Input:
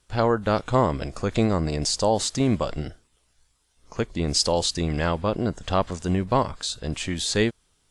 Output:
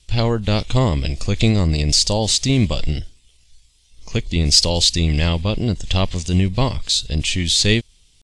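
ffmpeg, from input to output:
-af "aexciter=amount=7.6:drive=8.4:freq=2.2k,aemphasis=mode=reproduction:type=riaa,atempo=0.96,volume=-3dB"

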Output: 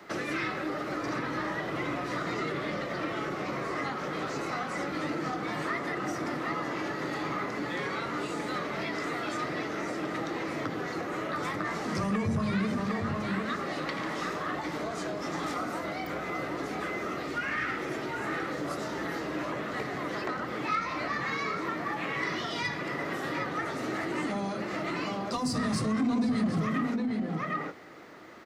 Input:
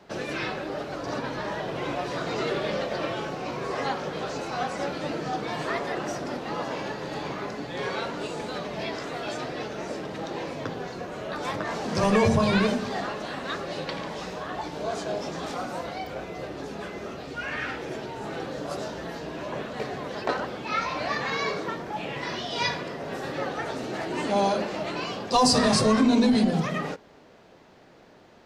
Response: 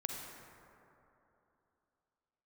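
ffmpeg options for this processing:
-filter_complex "[0:a]asplit=2[a][b];[b]adelay=758,volume=-6dB,highshelf=f=4k:g=-17.1[c];[a][c]amix=inputs=2:normalize=0,acrossover=split=220[d][e];[e]acompressor=threshold=-34dB:ratio=12[f];[d][f]amix=inputs=2:normalize=0,equalizer=f=315:t=o:w=0.33:g=8,equalizer=f=1.25k:t=o:w=0.33:g=11,equalizer=f=2k:t=o:w=0.33:g=11,asoftclip=type=tanh:threshold=-20dB,highpass=f=100:p=1,highshelf=f=8.8k:g=11"

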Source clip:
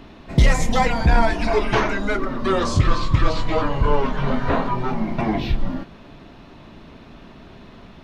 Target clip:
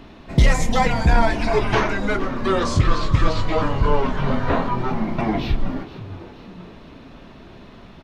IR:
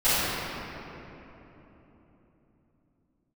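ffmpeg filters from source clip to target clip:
-filter_complex "[0:a]asplit=5[a][b][c][d][e];[b]adelay=472,afreqshift=82,volume=-16.5dB[f];[c]adelay=944,afreqshift=164,volume=-23.2dB[g];[d]adelay=1416,afreqshift=246,volume=-30dB[h];[e]adelay=1888,afreqshift=328,volume=-36.7dB[i];[a][f][g][h][i]amix=inputs=5:normalize=0"

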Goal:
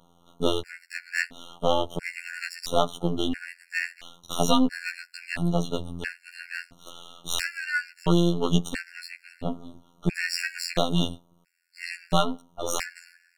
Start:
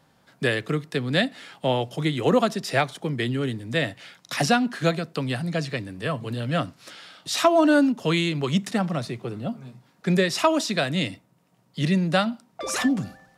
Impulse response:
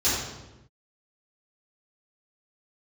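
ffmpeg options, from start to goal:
-af "aeval=exprs='if(lt(val(0),0),0.251*val(0),val(0))':c=same,afftfilt=real='hypot(re,im)*cos(PI*b)':imag='0':win_size=2048:overlap=0.75,afftfilt=real='re*gt(sin(2*PI*0.74*pts/sr)*(1-2*mod(floor(b*sr/1024/1400),2)),0)':imag='im*gt(sin(2*PI*0.74*pts/sr)*(1-2*mod(floor(b*sr/1024/1400),2)),0)':win_size=1024:overlap=0.75,volume=7.5dB"

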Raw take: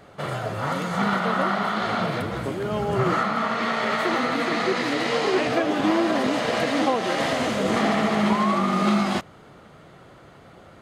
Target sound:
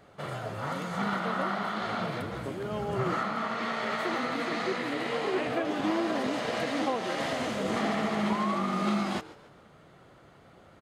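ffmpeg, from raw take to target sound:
-filter_complex "[0:a]asettb=1/sr,asplit=3[a][b][c];[a]atrim=end=4.764[d];[b]atrim=start=4.76:end=5.65,asetpts=PTS-STARTPTS,afade=t=in:d=0.004:c=qsin,afade=t=out:st=0.886:d=0.004:c=qsin,equalizer=f=5.5k:t=o:w=0.82:g=-7.5[e];[c]atrim=start=5.646[f];[d][e]acrossfade=d=0.004:c1=hsin:c2=qsin[g];[g][f]acrossfade=d=0.004:c1=qsin:c2=hsin,asplit=4[h][i][j][k];[i]adelay=141,afreqshift=120,volume=-18.5dB[l];[j]adelay=282,afreqshift=240,volume=-26.5dB[m];[k]adelay=423,afreqshift=360,volume=-34.4dB[n];[h][l][m][n]amix=inputs=4:normalize=0,volume=-7.5dB"

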